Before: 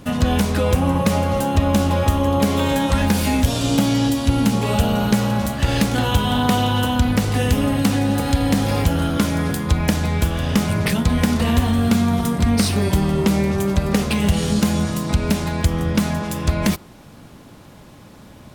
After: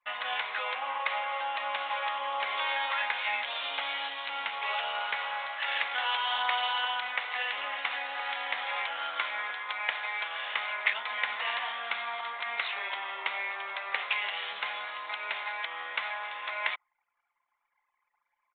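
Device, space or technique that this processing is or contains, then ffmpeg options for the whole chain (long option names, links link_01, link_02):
musical greeting card: -af "aresample=8000,aresample=44100,highpass=frequency=840:width=0.5412,highpass=frequency=840:width=1.3066,equalizer=frequency=2100:width_type=o:width=0.38:gain=7.5,anlmdn=0.398,volume=-5dB"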